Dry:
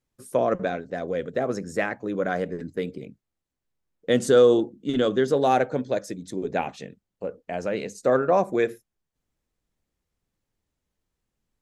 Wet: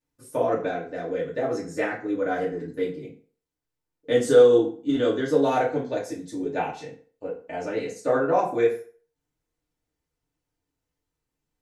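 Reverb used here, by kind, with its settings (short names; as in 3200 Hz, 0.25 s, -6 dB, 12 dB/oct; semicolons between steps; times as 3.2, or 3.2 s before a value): FDN reverb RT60 0.44 s, low-frequency decay 0.75×, high-frequency decay 0.75×, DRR -7 dB; gain -8.5 dB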